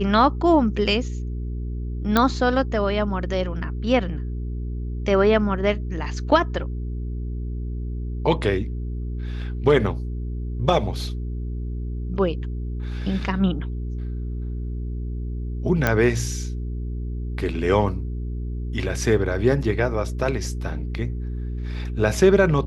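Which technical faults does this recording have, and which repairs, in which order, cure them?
hum 60 Hz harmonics 7 -28 dBFS
2.17 s: pop -5 dBFS
15.87 s: pop -6 dBFS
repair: de-click; de-hum 60 Hz, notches 7

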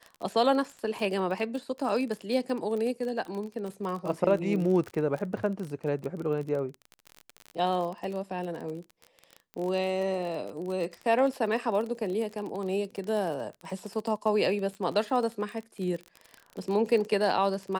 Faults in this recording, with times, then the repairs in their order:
crackle 30 per s -33 dBFS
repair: de-click

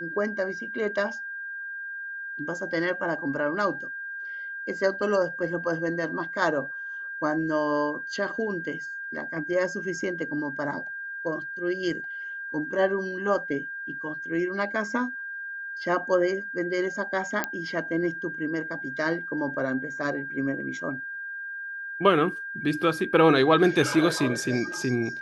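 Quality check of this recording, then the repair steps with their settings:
whine 1.6 kHz -33 dBFS
17.44 s: pop -10 dBFS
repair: de-click; band-stop 1.6 kHz, Q 30

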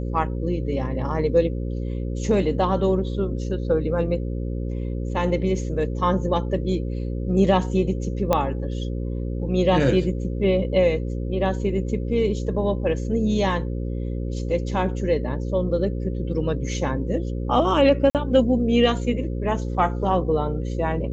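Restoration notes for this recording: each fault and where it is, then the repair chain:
buzz 60 Hz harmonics 9 -27 dBFS
8.33 s: pop -7 dBFS
18.10–18.15 s: dropout 48 ms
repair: de-click; de-hum 60 Hz, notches 9; interpolate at 18.10 s, 48 ms

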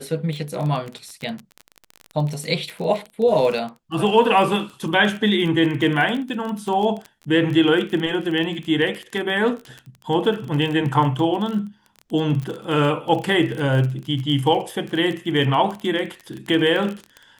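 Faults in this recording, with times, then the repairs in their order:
crackle 28 per s -26 dBFS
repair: de-click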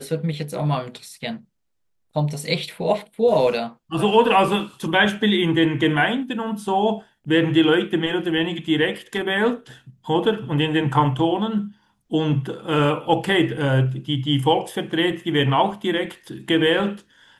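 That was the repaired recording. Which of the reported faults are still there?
nothing left

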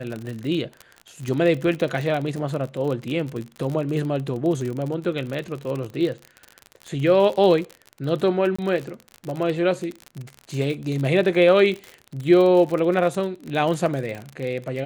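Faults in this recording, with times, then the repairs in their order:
crackle 47 per s -27 dBFS
8.56–8.59 s: dropout 25 ms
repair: de-click; interpolate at 8.56 s, 25 ms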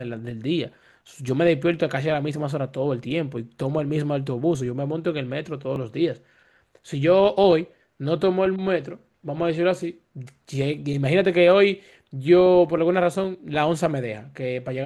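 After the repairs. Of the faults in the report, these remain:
nothing left

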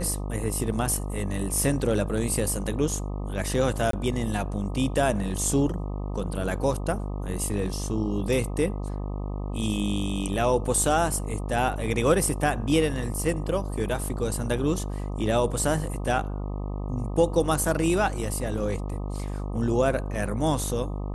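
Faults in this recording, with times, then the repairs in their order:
buzz 50 Hz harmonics 25 -31 dBFS
3.91–3.93 s: dropout 23 ms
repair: de-hum 50 Hz, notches 25; interpolate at 3.91 s, 23 ms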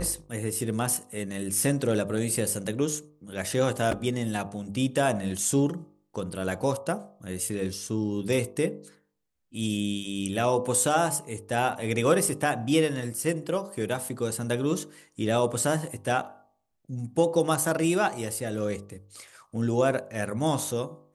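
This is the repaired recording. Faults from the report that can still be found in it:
nothing left

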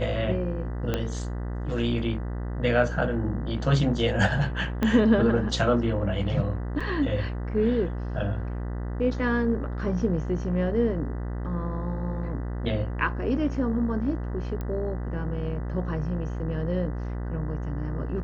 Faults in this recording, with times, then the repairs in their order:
buzz 60 Hz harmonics 33 -31 dBFS
0.94 s: pop -12 dBFS
4.83 s: pop -13 dBFS
6.80–6.81 s: dropout 5.5 ms
14.61 s: pop -21 dBFS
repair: de-click; de-hum 60 Hz, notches 33; interpolate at 6.80 s, 5.5 ms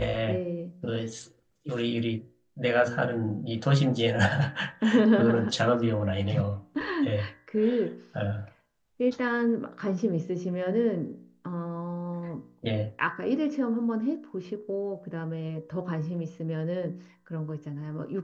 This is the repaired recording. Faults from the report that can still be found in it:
0.94 s: pop
4.83 s: pop

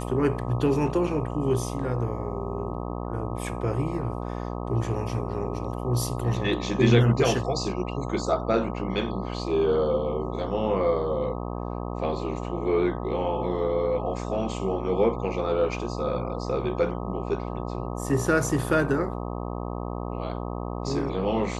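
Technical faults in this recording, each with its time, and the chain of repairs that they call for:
buzz 60 Hz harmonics 21 -32 dBFS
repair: de-hum 60 Hz, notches 21

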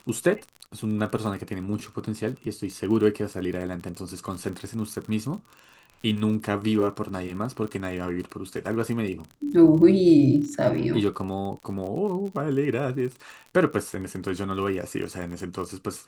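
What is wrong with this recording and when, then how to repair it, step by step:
crackle 42 per s -33 dBFS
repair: de-click

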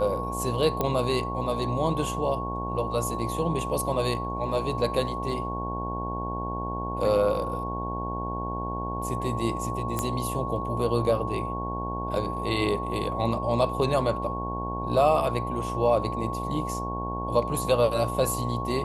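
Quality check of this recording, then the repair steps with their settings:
buzz 60 Hz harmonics 17 -33 dBFS
whine 1.1 kHz -32 dBFS
0.81 s: pop -12 dBFS
9.99 s: pop -13 dBFS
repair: de-click; de-hum 60 Hz, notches 17; band-stop 1.1 kHz, Q 30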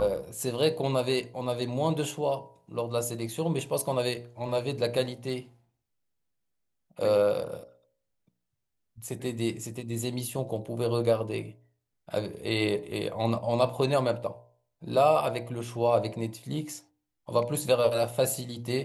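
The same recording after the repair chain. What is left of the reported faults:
nothing left

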